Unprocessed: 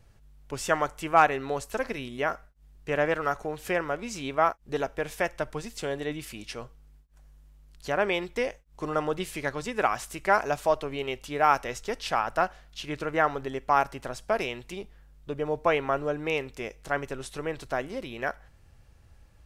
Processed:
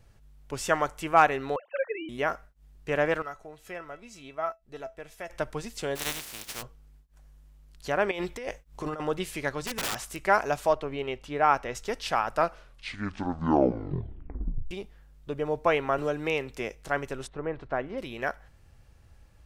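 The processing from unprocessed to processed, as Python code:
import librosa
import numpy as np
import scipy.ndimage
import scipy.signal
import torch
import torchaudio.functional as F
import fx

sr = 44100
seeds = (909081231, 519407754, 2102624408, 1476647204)

y = fx.sine_speech(x, sr, at=(1.56, 2.09))
y = fx.comb_fb(y, sr, f0_hz=660.0, decay_s=0.16, harmonics='all', damping=0.0, mix_pct=80, at=(3.22, 5.3))
y = fx.spec_flatten(y, sr, power=0.22, at=(5.95, 6.61), fade=0.02)
y = fx.over_compress(y, sr, threshold_db=-34.0, ratio=-1.0, at=(8.11, 9.0))
y = fx.overflow_wrap(y, sr, gain_db=25.0, at=(9.61, 10.2))
y = fx.lowpass(y, sr, hz=2600.0, slope=6, at=(10.73, 11.75))
y = fx.band_squash(y, sr, depth_pct=40, at=(15.98, 16.75))
y = fx.lowpass(y, sr, hz=fx.line((17.26, 1200.0), (17.97, 2500.0)), slope=12, at=(17.26, 17.97), fade=0.02)
y = fx.edit(y, sr, fx.tape_stop(start_s=12.25, length_s=2.46), tone=tone)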